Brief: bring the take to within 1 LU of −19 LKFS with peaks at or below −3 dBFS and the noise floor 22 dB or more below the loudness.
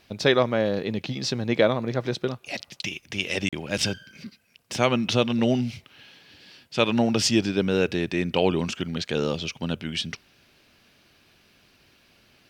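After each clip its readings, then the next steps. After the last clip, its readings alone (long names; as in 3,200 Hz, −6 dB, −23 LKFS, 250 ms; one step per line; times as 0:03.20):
number of dropouts 1; longest dropout 36 ms; integrated loudness −25.5 LKFS; sample peak −5.0 dBFS; target loudness −19.0 LKFS
→ repair the gap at 0:03.49, 36 ms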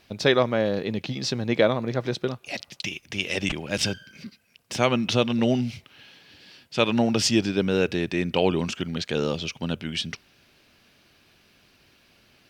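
number of dropouts 0; integrated loudness −25.5 LKFS; sample peak −5.0 dBFS; target loudness −19.0 LKFS
→ level +6.5 dB
brickwall limiter −3 dBFS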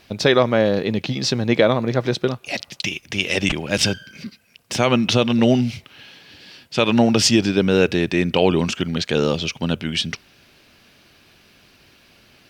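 integrated loudness −19.5 LKFS; sample peak −3.0 dBFS; background noise floor −54 dBFS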